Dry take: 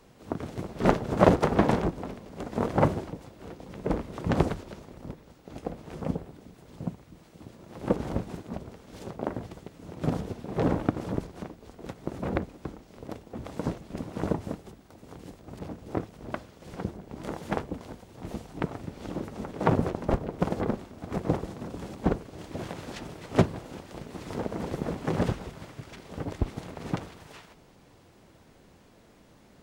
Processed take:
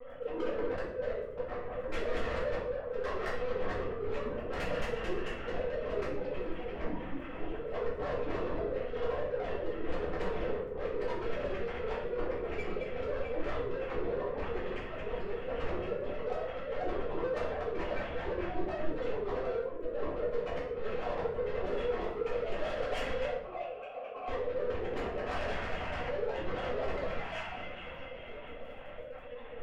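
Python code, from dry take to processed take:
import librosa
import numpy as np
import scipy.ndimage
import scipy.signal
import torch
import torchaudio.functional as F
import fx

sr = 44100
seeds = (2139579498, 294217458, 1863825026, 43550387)

y = fx.sine_speech(x, sr)
y = scipy.signal.sosfilt(scipy.signal.butter(2, 250.0, 'highpass', fs=sr, output='sos'), y)
y = fx.echo_wet_highpass(y, sr, ms=218, feedback_pct=78, hz=2400.0, wet_db=-5)
y = fx.lpc_vocoder(y, sr, seeds[0], excitation='pitch_kept', order=10)
y = fx.over_compress(y, sr, threshold_db=-39.0, ratio=-1.0)
y = fx.dmg_crackle(y, sr, seeds[1], per_s=16.0, level_db=-60.0)
y = fx.vowel_filter(y, sr, vowel='a', at=(23.32, 24.27), fade=0.02)
y = 10.0 ** (-38.0 / 20.0) * np.tanh(y / 10.0 ** (-38.0 / 20.0))
y = fx.room_shoebox(y, sr, seeds[2], volume_m3=160.0, walls='mixed', distance_m=2.1)
y = y * 10.0 ** (-2.0 / 20.0)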